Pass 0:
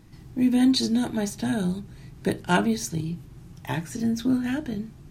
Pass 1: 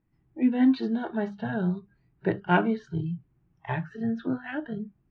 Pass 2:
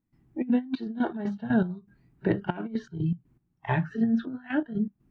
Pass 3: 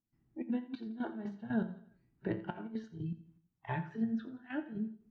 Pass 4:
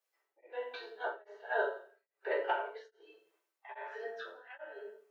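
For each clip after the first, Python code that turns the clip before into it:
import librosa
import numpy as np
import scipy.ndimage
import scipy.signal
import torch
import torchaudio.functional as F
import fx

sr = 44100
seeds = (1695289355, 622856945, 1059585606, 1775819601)

y1 = scipy.signal.sosfilt(scipy.signal.butter(4, 2500.0, 'lowpass', fs=sr, output='sos'), x)
y1 = fx.hum_notches(y1, sr, base_hz=50, count=4)
y1 = fx.noise_reduce_blind(y1, sr, reduce_db=22)
y2 = fx.peak_eq(y1, sr, hz=240.0, db=7.5, octaves=0.62)
y2 = fx.over_compress(y2, sr, threshold_db=-22.0, ratio=-0.5)
y2 = fx.step_gate(y2, sr, bpm=120, pattern='.xxxxx..x.x.x.', floor_db=-12.0, edge_ms=4.5)
y3 = fx.comb_fb(y2, sr, f0_hz=110.0, decay_s=0.41, harmonics='all', damping=0.0, mix_pct=60)
y3 = fx.echo_feedback(y3, sr, ms=85, feedback_pct=45, wet_db=-16.0)
y3 = y3 * 10.0 ** (-4.5 / 20.0)
y4 = scipy.signal.sosfilt(scipy.signal.cheby1(6, 3, 410.0, 'highpass', fs=sr, output='sos'), y3)
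y4 = fx.room_shoebox(y4, sr, seeds[0], volume_m3=200.0, walls='furnished', distance_m=3.8)
y4 = y4 * np.abs(np.cos(np.pi * 1.2 * np.arange(len(y4)) / sr))
y4 = y4 * 10.0 ** (5.5 / 20.0)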